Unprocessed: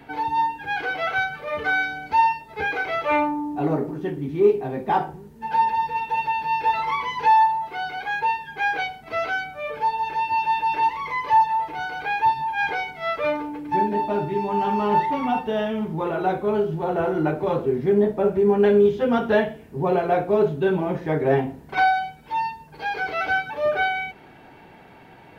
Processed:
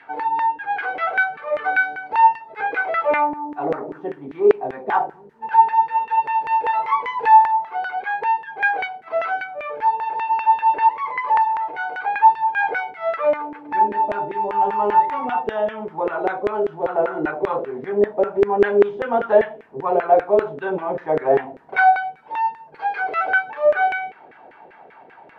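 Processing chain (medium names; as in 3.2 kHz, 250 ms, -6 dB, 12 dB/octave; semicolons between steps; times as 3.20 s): LFO band-pass saw down 5.1 Hz 440–1900 Hz; trim +8.5 dB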